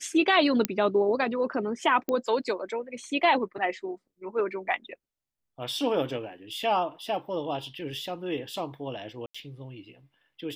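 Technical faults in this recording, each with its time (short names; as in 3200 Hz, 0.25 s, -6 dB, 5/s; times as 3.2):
0.65 pop -7 dBFS
2.09 pop -16 dBFS
9.26–9.35 gap 85 ms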